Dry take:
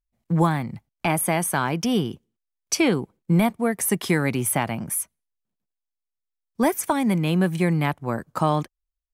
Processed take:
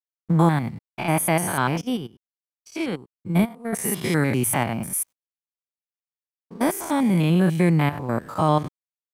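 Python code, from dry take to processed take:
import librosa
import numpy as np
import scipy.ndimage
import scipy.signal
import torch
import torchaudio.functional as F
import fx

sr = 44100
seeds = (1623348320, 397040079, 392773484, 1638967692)

y = fx.spec_steps(x, sr, hold_ms=100)
y = np.sign(y) * np.maximum(np.abs(y) - 10.0 ** (-55.5 / 20.0), 0.0)
y = fx.upward_expand(y, sr, threshold_db=-31.0, expansion=2.5, at=(1.81, 3.73))
y = y * librosa.db_to_amplitude(3.5)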